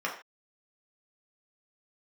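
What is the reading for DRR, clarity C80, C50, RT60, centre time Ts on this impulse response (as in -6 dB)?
-3.0 dB, 11.5 dB, 7.5 dB, not exponential, 24 ms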